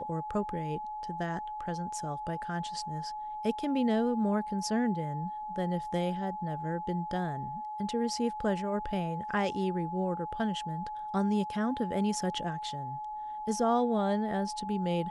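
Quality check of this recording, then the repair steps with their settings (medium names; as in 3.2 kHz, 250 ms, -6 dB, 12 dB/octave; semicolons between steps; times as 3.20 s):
whine 850 Hz -36 dBFS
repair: band-stop 850 Hz, Q 30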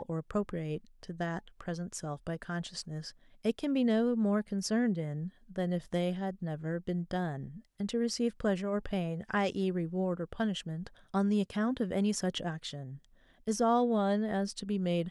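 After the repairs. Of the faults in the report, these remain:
nothing left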